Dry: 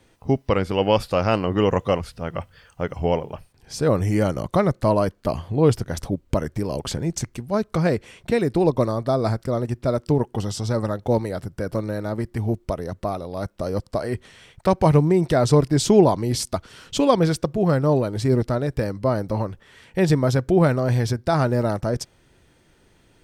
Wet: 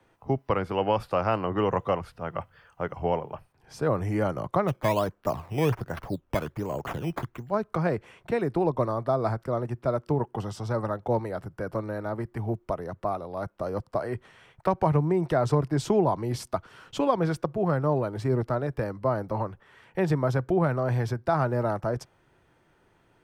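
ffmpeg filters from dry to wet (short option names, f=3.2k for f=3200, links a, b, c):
-filter_complex "[0:a]asplit=3[a][b][c];[a]afade=t=out:st=4.67:d=0.02[d];[b]acrusher=samples=11:mix=1:aa=0.000001:lfo=1:lforange=11:lforate=1.3,afade=t=in:st=4.67:d=0.02,afade=t=out:st=7.49:d=0.02[e];[c]afade=t=in:st=7.49:d=0.02[f];[d][e][f]amix=inputs=3:normalize=0,equalizer=f=125:t=o:w=1:g=5,equalizer=f=250:t=o:w=1:g=-7,equalizer=f=500:t=o:w=1:g=-6,equalizer=f=2k:t=o:w=1:g=-5,equalizer=f=4k:t=o:w=1:g=-4,equalizer=f=8k:t=o:w=1:g=-4,acrossover=split=180[g][h];[h]acompressor=threshold=-21dB:ratio=4[i];[g][i]amix=inputs=2:normalize=0,acrossover=split=230 2500:gain=0.2 1 0.251[j][k][l];[j][k][l]amix=inputs=3:normalize=0,volume=2.5dB"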